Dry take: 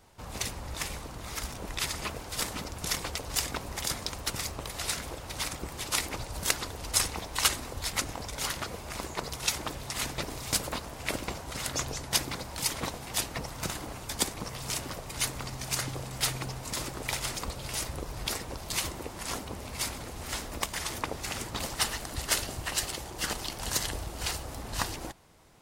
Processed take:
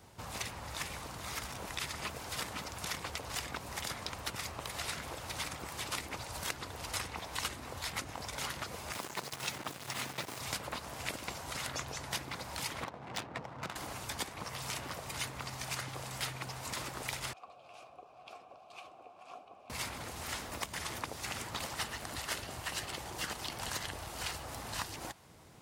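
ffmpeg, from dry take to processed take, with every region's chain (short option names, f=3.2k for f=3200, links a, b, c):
-filter_complex "[0:a]asettb=1/sr,asplit=3[a][b][c];[a]atrim=end=8.934[d];[b]atrim=start=8.93:end=10.4,asetpts=PTS-STARTPTS,afade=t=in:d=0.004:c=qsin,afade=t=out:st=1.466:d=0.004:c=qsin,highpass=f=100:w=0.5412,highpass=f=100:w=1.3066,acrusher=bits=5:mix=0:aa=0.5[e];[c]atrim=start=10.396[f];[d][e]acrossfade=d=0.004:c1=hsin:c2=qsin[g];[g][f]acrossfade=d=0.004:c1=qsin:c2=hsin,asettb=1/sr,asplit=3[h][i][j];[h]atrim=end=12.844[k];[i]atrim=start=12.84:end=13.76,asetpts=PTS-STARTPTS,afade=t=in:d=0.004:c=qsin,afade=t=out:st=0.916:d=0.004:c=qsin,highpass=110,adynamicsmooth=sensitivity=4.5:basefreq=860[l];[j]atrim=start=13.756[m];[k][l]acrossfade=d=0.004:c1=hsin:c2=qsin[n];[n][m]acrossfade=d=0.004:c1=qsin:c2=hsin,asettb=1/sr,asplit=3[o][p][q];[o]atrim=end=17.334[r];[p]atrim=start=17.33:end=19.7,asetpts=PTS-STARTPTS,afade=t=in:d=0.004:c=qsin,afade=t=out:st=2.366:d=0.004:c=qsin,flanger=delay=2.3:depth=9.1:regen=68:speed=1.4:shape=sinusoidal,asplit=3[s][t][u];[s]bandpass=f=730:t=q:w=8,volume=0dB[v];[t]bandpass=f=1.09k:t=q:w=8,volume=-6dB[w];[u]bandpass=f=2.44k:t=q:w=8,volume=-9dB[x];[v][w][x]amix=inputs=3:normalize=0[y];[q]atrim=start=19.696[z];[r][y]acrossfade=d=0.004:c1=hsin:c2=qsin[aa];[aa][z]acrossfade=d=0.004:c1=qsin:c2=hsin,highpass=94,lowshelf=f=150:g=8.5,acrossover=split=650|3400[ab][ac][ad];[ab]acompressor=threshold=-48dB:ratio=4[ae];[ac]acompressor=threshold=-40dB:ratio=4[af];[ad]acompressor=threshold=-45dB:ratio=4[ag];[ae][af][ag]amix=inputs=3:normalize=0,volume=1dB"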